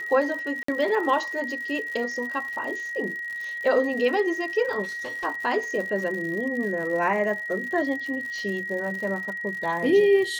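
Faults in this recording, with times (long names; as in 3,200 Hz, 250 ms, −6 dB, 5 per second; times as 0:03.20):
surface crackle 110 per second −33 dBFS
whistle 1,900 Hz −30 dBFS
0:00.63–0:00.68: drop-out 54 ms
0:04.83–0:05.25: clipping −30.5 dBFS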